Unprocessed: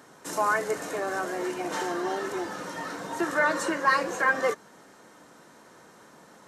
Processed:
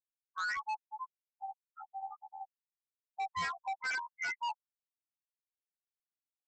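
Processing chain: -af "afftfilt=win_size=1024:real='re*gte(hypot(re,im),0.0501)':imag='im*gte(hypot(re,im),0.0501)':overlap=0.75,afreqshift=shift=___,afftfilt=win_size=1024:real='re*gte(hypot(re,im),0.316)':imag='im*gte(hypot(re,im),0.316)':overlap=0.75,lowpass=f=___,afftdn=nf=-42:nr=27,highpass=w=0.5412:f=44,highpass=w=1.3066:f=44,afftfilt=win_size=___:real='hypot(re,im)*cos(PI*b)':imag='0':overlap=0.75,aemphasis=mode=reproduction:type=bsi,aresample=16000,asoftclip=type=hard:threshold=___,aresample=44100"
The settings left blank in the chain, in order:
440, 2800, 2048, -33dB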